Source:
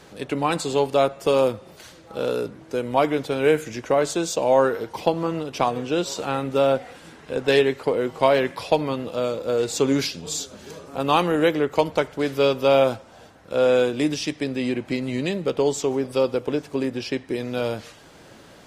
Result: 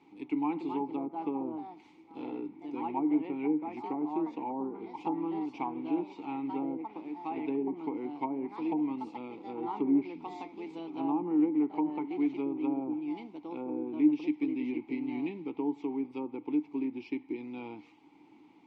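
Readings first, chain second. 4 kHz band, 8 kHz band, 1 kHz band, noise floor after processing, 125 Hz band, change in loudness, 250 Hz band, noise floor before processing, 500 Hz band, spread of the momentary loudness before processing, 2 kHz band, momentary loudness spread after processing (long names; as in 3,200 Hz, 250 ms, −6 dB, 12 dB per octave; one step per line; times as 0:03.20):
below −25 dB, below −40 dB, −11.5 dB, −58 dBFS, −19.5 dB, −11.0 dB, −3.5 dB, −48 dBFS, −19.0 dB, 10 LU, −20.5 dB, 12 LU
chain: delay with pitch and tempo change per echo 339 ms, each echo +3 semitones, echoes 2, each echo −6 dB
treble cut that deepens with the level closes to 620 Hz, closed at −13.5 dBFS
formant filter u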